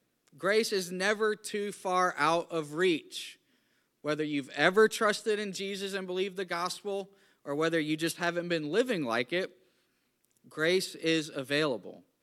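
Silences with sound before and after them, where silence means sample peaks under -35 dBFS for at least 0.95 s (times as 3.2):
9.46–10.58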